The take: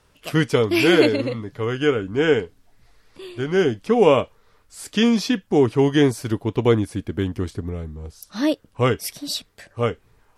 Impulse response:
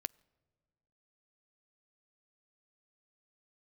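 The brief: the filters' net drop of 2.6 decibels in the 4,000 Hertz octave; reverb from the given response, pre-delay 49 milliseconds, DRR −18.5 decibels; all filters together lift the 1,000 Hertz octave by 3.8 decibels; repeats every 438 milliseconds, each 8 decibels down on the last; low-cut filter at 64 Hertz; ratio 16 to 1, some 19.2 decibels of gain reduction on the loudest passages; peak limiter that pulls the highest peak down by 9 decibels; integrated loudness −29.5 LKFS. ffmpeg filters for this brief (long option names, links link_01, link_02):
-filter_complex "[0:a]highpass=64,equalizer=frequency=1000:width_type=o:gain=5,equalizer=frequency=4000:width_type=o:gain=-4,acompressor=threshold=-29dB:ratio=16,alimiter=level_in=0.5dB:limit=-24dB:level=0:latency=1,volume=-0.5dB,aecho=1:1:438|876|1314|1752|2190:0.398|0.159|0.0637|0.0255|0.0102,asplit=2[link_01][link_02];[1:a]atrim=start_sample=2205,adelay=49[link_03];[link_02][link_03]afir=irnorm=-1:irlink=0,volume=20.5dB[link_04];[link_01][link_04]amix=inputs=2:normalize=0,volume=-12.5dB"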